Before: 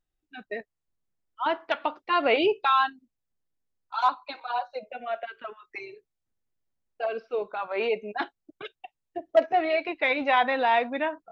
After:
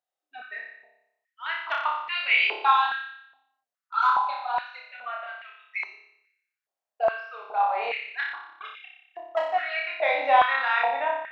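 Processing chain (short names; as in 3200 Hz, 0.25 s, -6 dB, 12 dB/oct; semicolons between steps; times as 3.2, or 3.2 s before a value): flutter echo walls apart 5.1 m, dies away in 0.79 s; stepped high-pass 2.4 Hz 680–2200 Hz; gain -5.5 dB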